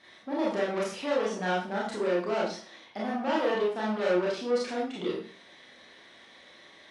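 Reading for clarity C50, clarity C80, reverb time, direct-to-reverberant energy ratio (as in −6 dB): 3.0 dB, 7.5 dB, 0.45 s, −5.5 dB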